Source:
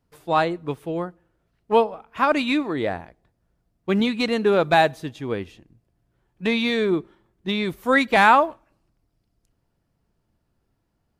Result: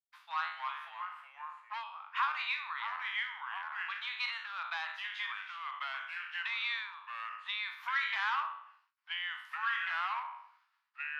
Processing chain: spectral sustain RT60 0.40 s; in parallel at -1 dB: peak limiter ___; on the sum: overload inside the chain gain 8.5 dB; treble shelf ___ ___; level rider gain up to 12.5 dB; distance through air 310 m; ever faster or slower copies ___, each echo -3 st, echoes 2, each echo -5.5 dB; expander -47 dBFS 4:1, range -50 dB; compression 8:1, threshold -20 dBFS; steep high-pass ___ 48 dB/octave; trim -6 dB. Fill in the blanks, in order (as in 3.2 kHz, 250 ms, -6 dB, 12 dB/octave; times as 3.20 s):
-12.5 dBFS, 5 kHz, +8 dB, 202 ms, 1 kHz